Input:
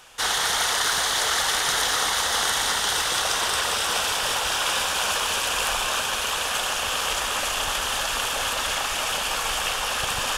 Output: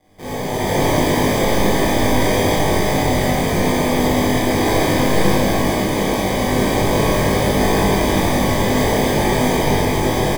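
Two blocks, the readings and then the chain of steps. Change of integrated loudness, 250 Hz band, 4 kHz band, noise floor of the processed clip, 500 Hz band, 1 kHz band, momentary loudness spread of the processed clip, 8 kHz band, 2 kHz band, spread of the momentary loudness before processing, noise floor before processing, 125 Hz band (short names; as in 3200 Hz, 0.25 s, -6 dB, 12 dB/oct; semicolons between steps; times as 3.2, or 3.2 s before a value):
+5.5 dB, +27.0 dB, -3.0 dB, -23 dBFS, +16.5 dB, +6.0 dB, 2 LU, -2.5 dB, +2.0 dB, 3 LU, -27 dBFS, +24.0 dB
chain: HPF 640 Hz 12 dB/oct; AGC gain up to 11 dB; sample-and-hold 32×; doubler 20 ms -2 dB; Schroeder reverb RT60 2.1 s, combs from 28 ms, DRR -10 dB; gain -12 dB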